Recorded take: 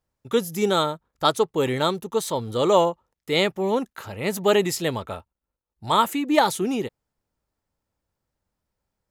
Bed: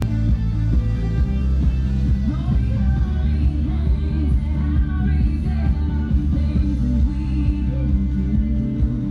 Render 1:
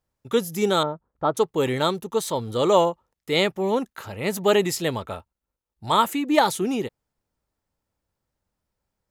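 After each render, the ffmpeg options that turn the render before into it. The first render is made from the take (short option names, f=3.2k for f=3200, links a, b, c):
-filter_complex "[0:a]asettb=1/sr,asplit=3[a][b][c];[a]atrim=end=0.834[d];[b]atrim=start=0.83:end=1.37,asetpts=PTS-STARTPTS,afade=t=in:d=0.004:c=qsin,afade=t=out:st=0.536:d=0.004:c=qsin,lowpass=1.1k[e];[c]atrim=start=1.366[f];[d][e]acrossfade=d=0.004:c1=hsin:c2=qsin[g];[g][f]acrossfade=d=0.004:c1=qsin:c2=hsin"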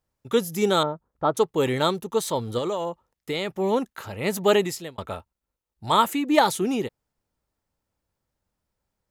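-filter_complex "[0:a]asettb=1/sr,asplit=3[a][b][c];[a]atrim=end=2.584[d];[b]atrim=start=2.58:end=3.56,asetpts=PTS-STARTPTS,afade=t=in:d=0.004:c=qsin,afade=t=out:st=0.976:d=0.004:c=qsin,acompressor=threshold=-23dB:ratio=12:attack=3.2:release=140:knee=1:detection=peak[e];[c]atrim=start=3.556[f];[d][e]acrossfade=d=0.004:c1=hsin:c2=qsin[g];[g][f]acrossfade=d=0.004:c1=qsin:c2=hsin,asplit=2[h][i];[h]atrim=end=4.98,asetpts=PTS-STARTPTS,afade=t=out:st=4.53:d=0.45[j];[i]atrim=start=4.98,asetpts=PTS-STARTPTS,afade=t=in:d=0.004:c=hsin[k];[j][k]concat=n=2:v=0:a=1"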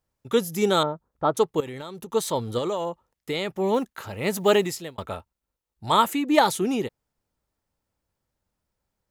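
-filter_complex "[0:a]asettb=1/sr,asplit=3[a][b][c];[a]atrim=end=1.604[d];[b]atrim=start=1.6:end=2.12,asetpts=PTS-STARTPTS,afade=t=in:d=0.004:c=qsin,afade=t=out:st=0.516:d=0.004:c=qsin,acompressor=threshold=-32dB:ratio=16:attack=3.2:release=140:knee=1:detection=peak[e];[c]atrim=start=2.116[f];[d][e]acrossfade=d=0.004:c1=hsin:c2=qsin[g];[g][f]acrossfade=d=0.004:c1=qsin:c2=hsin,asettb=1/sr,asplit=3[h][i][j];[h]atrim=end=3.744[k];[i]atrim=start=3.74:end=5.07,asetpts=PTS-STARTPTS,afade=t=in:d=0.004:c=qsin,afade=t=out:st=1.326:d=0.004:c=qsin,acrusher=bits=9:mode=log:mix=0:aa=0.000001[l];[j]atrim=start=5.066[m];[k][l]acrossfade=d=0.004:c1=hsin:c2=qsin[n];[n][m]acrossfade=d=0.004:c1=qsin:c2=hsin"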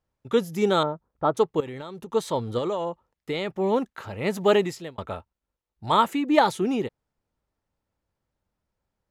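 -af "aemphasis=mode=reproduction:type=50kf"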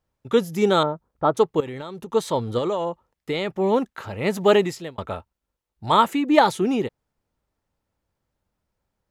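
-af "volume=3dB"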